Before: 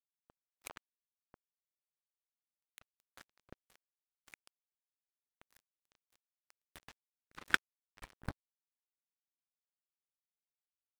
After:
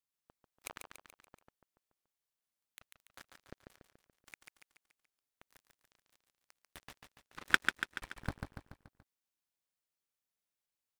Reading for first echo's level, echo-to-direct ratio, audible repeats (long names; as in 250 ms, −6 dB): −5.5 dB, −4.0 dB, 5